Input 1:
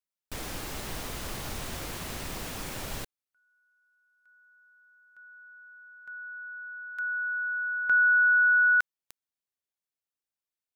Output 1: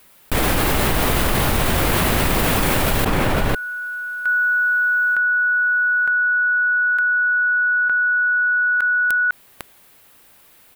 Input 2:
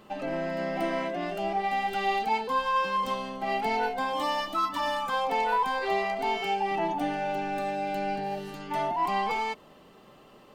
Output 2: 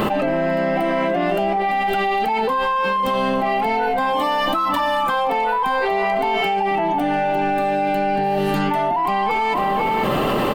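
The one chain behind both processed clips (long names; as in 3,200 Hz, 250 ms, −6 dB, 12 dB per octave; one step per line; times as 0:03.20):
parametric band 6,000 Hz −9.5 dB 1.2 octaves
slap from a distant wall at 86 metres, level −17 dB
envelope flattener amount 100%
level +4 dB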